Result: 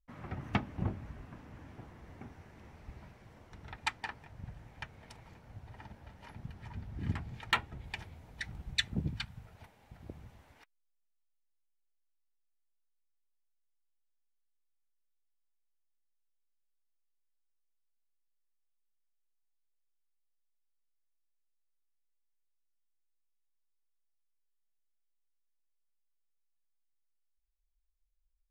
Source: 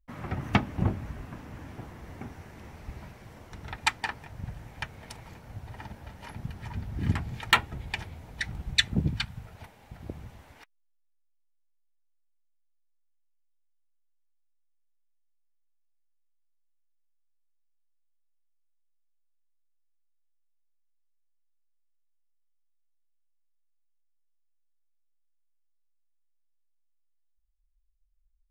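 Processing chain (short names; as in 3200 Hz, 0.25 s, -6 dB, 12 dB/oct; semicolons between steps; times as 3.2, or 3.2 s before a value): high shelf 8000 Hz -8.5 dB, from 7.84 s -2 dB; gain -8 dB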